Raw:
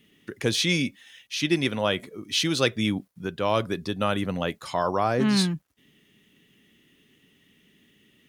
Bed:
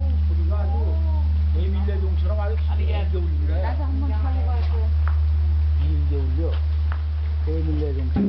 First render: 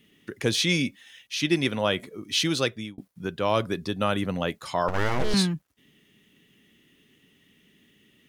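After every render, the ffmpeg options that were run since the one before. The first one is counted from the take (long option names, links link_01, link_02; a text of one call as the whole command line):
ffmpeg -i in.wav -filter_complex "[0:a]asettb=1/sr,asplit=3[link_01][link_02][link_03];[link_01]atrim=end=4.884[link_04];[link_02]atrim=start=4.88:end=5.34,asetpts=PTS-STARTPTS,afade=type=in:duration=0.004:curve=qsin,afade=type=out:start_time=0.456:duration=0.004:curve=qsin,aeval=exprs='abs(val(0))':channel_layout=same[link_05];[link_03]atrim=start=5.336[link_06];[link_04][link_05]acrossfade=duration=0.004:curve1=hsin:curve2=qsin[link_07];[link_07][link_06]acrossfade=duration=0.004:curve1=qsin:curve2=hsin,asplit=2[link_08][link_09];[link_08]atrim=end=2.98,asetpts=PTS-STARTPTS,afade=type=out:start_time=2.51:duration=0.47[link_10];[link_09]atrim=start=2.98,asetpts=PTS-STARTPTS,afade=type=in:duration=0.004:curve=hsin[link_11];[link_10][link_11]concat=n=2:v=0:a=1" out.wav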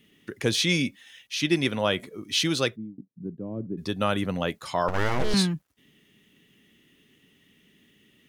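ffmpeg -i in.wav -filter_complex "[0:a]asplit=3[link_01][link_02][link_03];[link_01]afade=type=out:start_time=2.75:duration=0.02[link_04];[link_02]asuperpass=centerf=200:order=4:qfactor=0.98,afade=type=in:start_time=2.75:duration=0.02,afade=type=out:start_time=3.77:duration=0.02[link_05];[link_03]afade=type=in:start_time=3.77:duration=0.02[link_06];[link_04][link_05][link_06]amix=inputs=3:normalize=0" out.wav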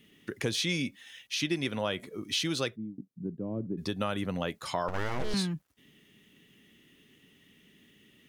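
ffmpeg -i in.wav -af "acompressor=threshold=-30dB:ratio=2.5" out.wav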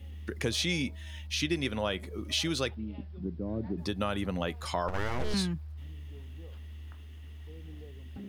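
ffmpeg -i in.wav -i bed.wav -filter_complex "[1:a]volume=-23dB[link_01];[0:a][link_01]amix=inputs=2:normalize=0" out.wav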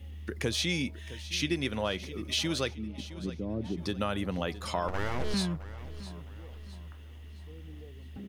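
ffmpeg -i in.wav -af "aecho=1:1:663|1326|1989|2652:0.158|0.065|0.0266|0.0109" out.wav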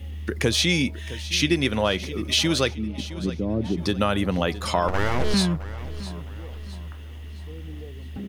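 ffmpeg -i in.wav -af "volume=9dB" out.wav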